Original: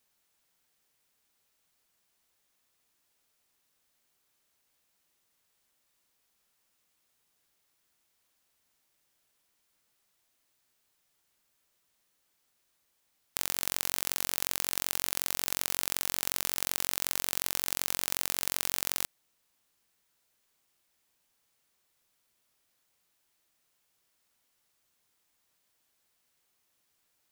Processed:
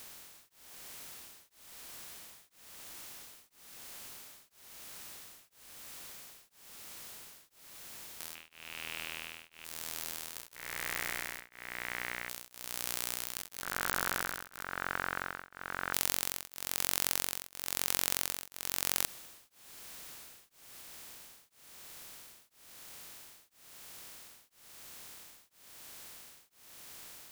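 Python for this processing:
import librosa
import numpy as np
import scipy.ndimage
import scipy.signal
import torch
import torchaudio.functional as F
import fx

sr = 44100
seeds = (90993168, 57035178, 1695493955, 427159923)

y = fx.bin_compress(x, sr, power=0.4)
y = fx.lowpass_res(y, sr, hz=1500.0, q=3.9, at=(13.62, 15.93))
y = fx.echo_pitch(y, sr, ms=352, semitones=5, count=2, db_per_echo=-3.0)
y = y * np.abs(np.cos(np.pi * 1.0 * np.arange(len(y)) / sr))
y = y * librosa.db_to_amplitude(-1.0)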